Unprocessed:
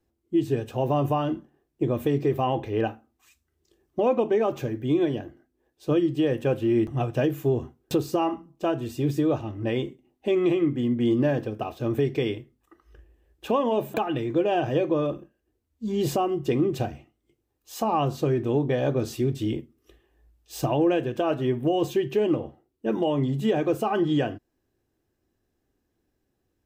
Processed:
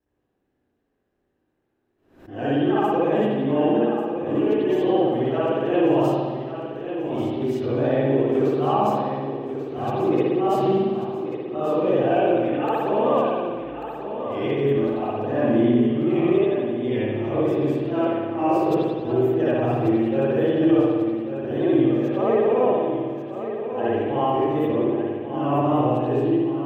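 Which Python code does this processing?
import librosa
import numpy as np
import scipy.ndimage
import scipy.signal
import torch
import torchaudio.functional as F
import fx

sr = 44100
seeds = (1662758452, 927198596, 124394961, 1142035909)

p1 = x[::-1].copy()
p2 = fx.high_shelf(p1, sr, hz=2800.0, db=-9.0)
p3 = fx.vibrato(p2, sr, rate_hz=2.7, depth_cents=80.0)
p4 = fx.low_shelf(p3, sr, hz=150.0, db=-10.5)
p5 = p4 + fx.echo_feedback(p4, sr, ms=1140, feedback_pct=42, wet_db=-9.5, dry=0)
p6 = fx.rev_spring(p5, sr, rt60_s=1.6, pass_ms=(57,), chirp_ms=40, drr_db=-9.0)
p7 = fx.pre_swell(p6, sr, db_per_s=100.0)
y = p7 * 10.0 ** (-4.0 / 20.0)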